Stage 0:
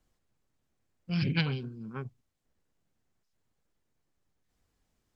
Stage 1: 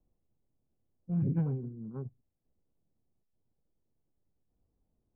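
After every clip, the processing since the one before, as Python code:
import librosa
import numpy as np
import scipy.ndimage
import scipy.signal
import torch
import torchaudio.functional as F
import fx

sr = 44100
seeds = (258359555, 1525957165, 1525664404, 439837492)

y = scipy.signal.sosfilt(scipy.signal.bessel(4, 570.0, 'lowpass', norm='mag', fs=sr, output='sos'), x)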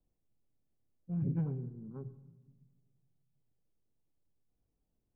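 y = fx.room_shoebox(x, sr, seeds[0], volume_m3=950.0, walls='mixed', distance_m=0.33)
y = y * librosa.db_to_amplitude(-4.5)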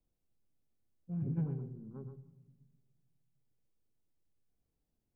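y = x + 10.0 ** (-7.5 / 20.0) * np.pad(x, (int(123 * sr / 1000.0), 0))[:len(x)]
y = y * librosa.db_to_amplitude(-2.5)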